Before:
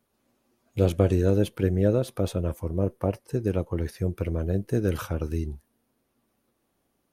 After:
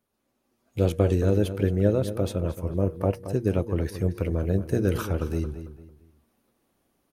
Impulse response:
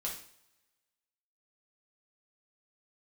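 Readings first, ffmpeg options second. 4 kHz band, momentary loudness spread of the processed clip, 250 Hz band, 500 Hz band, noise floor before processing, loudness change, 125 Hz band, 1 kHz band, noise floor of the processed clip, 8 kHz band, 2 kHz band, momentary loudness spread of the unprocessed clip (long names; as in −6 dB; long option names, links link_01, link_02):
+0.5 dB, 7 LU, +0.5 dB, +0.5 dB, −74 dBFS, +0.5 dB, +1.0 dB, +1.0 dB, −76 dBFS, +0.5 dB, +1.0 dB, 8 LU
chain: -filter_complex "[0:a]bandreject=frequency=118.7:width_type=h:width=4,bandreject=frequency=237.4:width_type=h:width=4,bandreject=frequency=356.1:width_type=h:width=4,bandreject=frequency=474.8:width_type=h:width=4,asplit=2[link_01][link_02];[link_02]adelay=224,lowpass=frequency=3700:poles=1,volume=-11dB,asplit=2[link_03][link_04];[link_04]adelay=224,lowpass=frequency=3700:poles=1,volume=0.32,asplit=2[link_05][link_06];[link_06]adelay=224,lowpass=frequency=3700:poles=1,volume=0.32[link_07];[link_03][link_05][link_07]amix=inputs=3:normalize=0[link_08];[link_01][link_08]amix=inputs=2:normalize=0,dynaudnorm=framelen=370:gausssize=3:maxgain=7dB,volume=-5dB"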